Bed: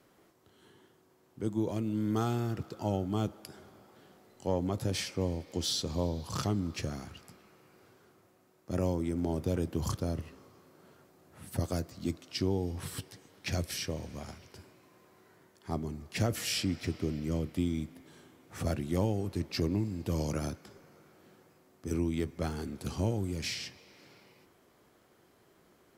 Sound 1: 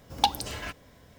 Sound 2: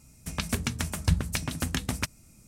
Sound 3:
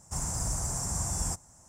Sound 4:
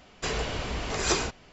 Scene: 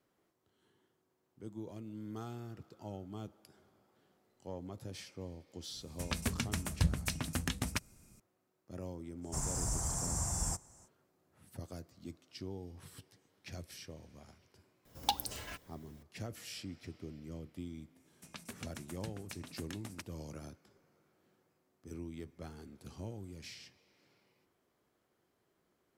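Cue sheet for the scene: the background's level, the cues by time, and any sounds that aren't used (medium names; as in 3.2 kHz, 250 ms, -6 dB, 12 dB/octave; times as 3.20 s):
bed -13.5 dB
5.73 s: add 2 -6 dB
9.21 s: add 3 -4 dB, fades 0.05 s
14.85 s: add 1 -10 dB + treble shelf 8 kHz +11.5 dB
17.96 s: add 2 -16.5 dB + high-pass 180 Hz
not used: 4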